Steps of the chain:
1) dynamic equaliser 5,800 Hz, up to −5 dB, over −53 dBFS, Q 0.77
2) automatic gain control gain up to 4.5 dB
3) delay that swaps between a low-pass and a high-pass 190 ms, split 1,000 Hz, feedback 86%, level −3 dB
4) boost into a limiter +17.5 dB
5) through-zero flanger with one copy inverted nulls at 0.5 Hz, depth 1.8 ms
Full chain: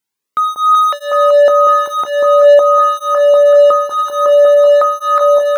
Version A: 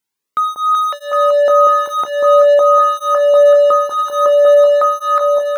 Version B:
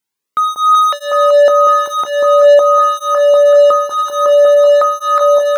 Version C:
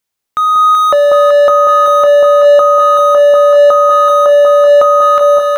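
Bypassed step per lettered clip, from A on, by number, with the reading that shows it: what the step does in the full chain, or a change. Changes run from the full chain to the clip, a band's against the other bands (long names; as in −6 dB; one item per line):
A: 2, change in momentary loudness spread +1 LU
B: 1, 4 kHz band +2.5 dB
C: 5, change in momentary loudness spread −5 LU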